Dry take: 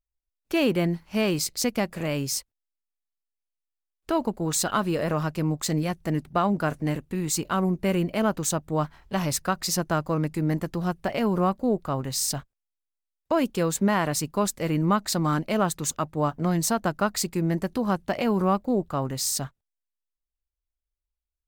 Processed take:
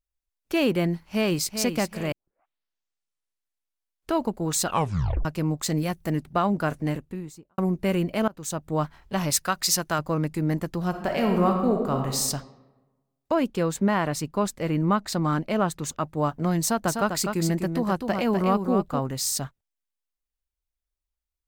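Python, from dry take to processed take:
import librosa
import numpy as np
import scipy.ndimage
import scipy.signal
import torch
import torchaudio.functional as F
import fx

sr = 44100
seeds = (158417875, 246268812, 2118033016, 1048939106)

y = fx.echo_throw(x, sr, start_s=0.92, length_s=0.65, ms=390, feedback_pct=40, wet_db=-9.0)
y = fx.high_shelf(y, sr, hz=12000.0, db=10.0, at=(5.75, 6.15))
y = fx.studio_fade_out(y, sr, start_s=6.81, length_s=0.77)
y = fx.tilt_shelf(y, sr, db=-5.0, hz=930.0, at=(9.3, 9.99))
y = fx.reverb_throw(y, sr, start_s=10.89, length_s=1.3, rt60_s=1.2, drr_db=2.0)
y = fx.high_shelf(y, sr, hz=4900.0, db=-8.0, at=(13.34, 16.04))
y = fx.echo_single(y, sr, ms=251, db=-6.0, at=(16.86, 18.98), fade=0.02)
y = fx.edit(y, sr, fx.tape_start(start_s=2.12, length_s=1.98),
    fx.tape_stop(start_s=4.66, length_s=0.59),
    fx.fade_in_from(start_s=8.28, length_s=0.43, floor_db=-23.5), tone=tone)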